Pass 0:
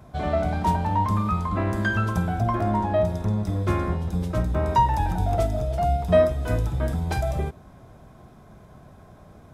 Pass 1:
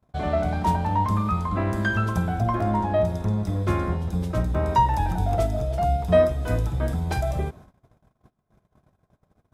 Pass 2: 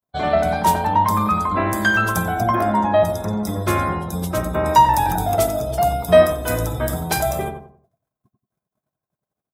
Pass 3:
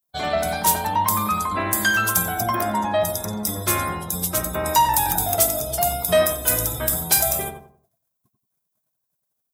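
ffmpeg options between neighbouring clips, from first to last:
ffmpeg -i in.wav -af "agate=range=-29dB:threshold=-44dB:ratio=16:detection=peak" out.wav
ffmpeg -i in.wav -filter_complex "[0:a]aemphasis=mode=production:type=bsi,afftdn=noise_reduction=25:noise_floor=-48,asplit=2[link_01][link_02];[link_02]adelay=90,lowpass=frequency=1300:poles=1,volume=-5.5dB,asplit=2[link_03][link_04];[link_04]adelay=90,lowpass=frequency=1300:poles=1,volume=0.34,asplit=2[link_05][link_06];[link_06]adelay=90,lowpass=frequency=1300:poles=1,volume=0.34,asplit=2[link_07][link_08];[link_08]adelay=90,lowpass=frequency=1300:poles=1,volume=0.34[link_09];[link_01][link_03][link_05][link_07][link_09]amix=inputs=5:normalize=0,volume=7.5dB" out.wav
ffmpeg -i in.wav -af "crystalizer=i=5.5:c=0,asoftclip=type=tanh:threshold=-2dB,volume=-6dB" out.wav

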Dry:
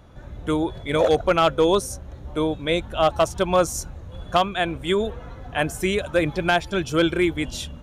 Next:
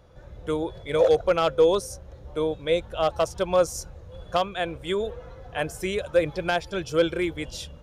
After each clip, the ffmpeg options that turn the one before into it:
ffmpeg -i in.wav -af "equalizer=frequency=250:width_type=o:width=0.33:gain=-9,equalizer=frequency=500:width_type=o:width=0.33:gain=9,equalizer=frequency=5000:width_type=o:width=0.33:gain=6,volume=-6dB" out.wav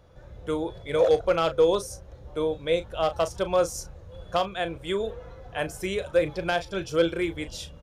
ffmpeg -i in.wav -filter_complex "[0:a]asplit=2[link_01][link_02];[link_02]adelay=36,volume=-12dB[link_03];[link_01][link_03]amix=inputs=2:normalize=0,volume=-1.5dB" out.wav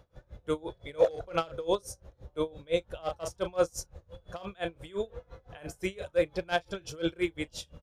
ffmpeg -i in.wav -af "aeval=exprs='val(0)*pow(10,-25*(0.5-0.5*cos(2*PI*5.8*n/s))/20)':channel_layout=same" out.wav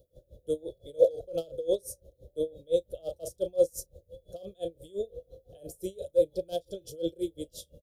ffmpeg -i in.wav -af "firequalizer=gain_entry='entry(220,0);entry(550,10);entry(930,-25);entry(2100,-28);entry(3300,0);entry(5600,0);entry(11000,14)':delay=0.05:min_phase=1,volume=-6dB" out.wav

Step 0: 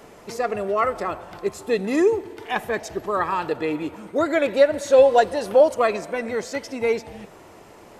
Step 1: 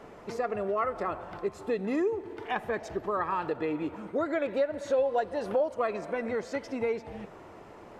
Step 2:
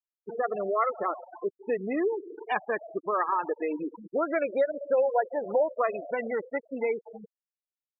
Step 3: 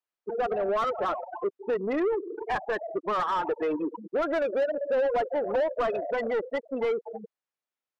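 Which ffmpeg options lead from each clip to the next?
ffmpeg -i in.wav -af "lowpass=frequency=2000:poles=1,acompressor=threshold=-27dB:ratio=2.5,equalizer=frequency=1300:width_type=o:width=0.77:gain=2,volume=-2dB" out.wav
ffmpeg -i in.wav -af "acrusher=bits=9:mix=0:aa=0.000001,lowshelf=frequency=310:gain=-9.5,afftfilt=real='re*gte(hypot(re,im),0.0316)':imag='im*gte(hypot(re,im),0.0316)':win_size=1024:overlap=0.75,volume=4.5dB" out.wav
ffmpeg -i in.wav -filter_complex "[0:a]asplit=2[link_01][link_02];[link_02]highpass=frequency=720:poles=1,volume=23dB,asoftclip=type=tanh:threshold=-13dB[link_03];[link_01][link_03]amix=inputs=2:normalize=0,lowpass=frequency=1100:poles=1,volume=-6dB,volume=-4.5dB" out.wav

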